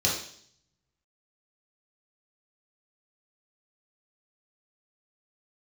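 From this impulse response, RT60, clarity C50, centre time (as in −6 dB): 0.60 s, 4.0 dB, 37 ms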